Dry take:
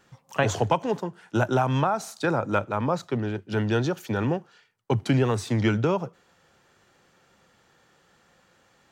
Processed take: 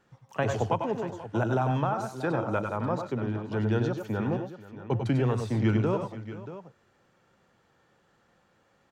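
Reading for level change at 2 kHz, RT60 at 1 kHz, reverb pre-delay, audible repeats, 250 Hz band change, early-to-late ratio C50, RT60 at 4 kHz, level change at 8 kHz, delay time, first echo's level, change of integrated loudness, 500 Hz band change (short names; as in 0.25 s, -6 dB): -6.0 dB, none, none, 3, -2.5 dB, none, none, under -10 dB, 94 ms, -8.0 dB, -3.5 dB, -3.5 dB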